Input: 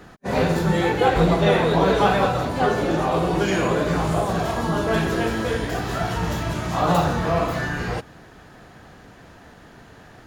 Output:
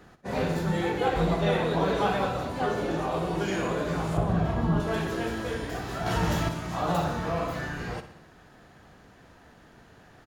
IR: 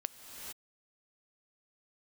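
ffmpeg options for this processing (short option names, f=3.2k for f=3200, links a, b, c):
-filter_complex "[0:a]asettb=1/sr,asplit=3[a][b][c];[a]atrim=end=4.174[d];[b]atrim=start=4.17:end=4.8,asetpts=PTS-STARTPTS,afade=t=in:d=0.004:c=qsin,afade=t=out:st=0.626:d=0.004:c=qsin,bass=f=250:g=11,treble=f=4k:g=-12[e];[c]atrim=start=4.796[f];[d][e]acrossfade=d=0.004:c1=hsin:c2=qsin[g];[g][f]acrossfade=d=0.004:c1=qsin:c2=hsin,asettb=1/sr,asplit=3[h][i][j];[h]atrim=end=6.064[k];[i]atrim=start=6.06:end=6.49,asetpts=PTS-STARTPTS,afade=t=in:d=0.004:c=qsin,afade=t=out:st=0.426:d=0.004:c=qsin,acontrast=75[l];[j]atrim=start=6.486[m];[k][l]acrossfade=d=0.004:c1=hsin:c2=qsin[n];[n][m]acrossfade=d=0.004:c1=qsin:c2=hsin,aecho=1:1:61|122|183|244|305|366:0.251|0.138|0.076|0.0418|0.023|0.0126,volume=-8dB"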